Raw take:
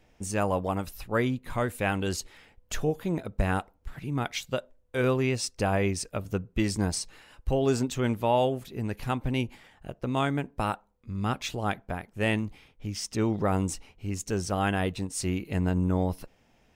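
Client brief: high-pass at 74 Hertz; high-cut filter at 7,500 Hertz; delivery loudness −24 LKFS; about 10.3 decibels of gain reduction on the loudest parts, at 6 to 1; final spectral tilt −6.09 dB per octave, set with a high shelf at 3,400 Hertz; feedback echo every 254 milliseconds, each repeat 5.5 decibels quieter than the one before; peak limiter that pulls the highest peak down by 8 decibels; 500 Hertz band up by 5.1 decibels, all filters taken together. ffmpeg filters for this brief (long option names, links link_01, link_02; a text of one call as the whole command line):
ffmpeg -i in.wav -af "highpass=74,lowpass=7500,equalizer=frequency=500:width_type=o:gain=6.5,highshelf=frequency=3400:gain=-7.5,acompressor=threshold=-28dB:ratio=6,alimiter=limit=-24dB:level=0:latency=1,aecho=1:1:254|508|762|1016|1270|1524|1778:0.531|0.281|0.149|0.079|0.0419|0.0222|0.0118,volume=11dB" out.wav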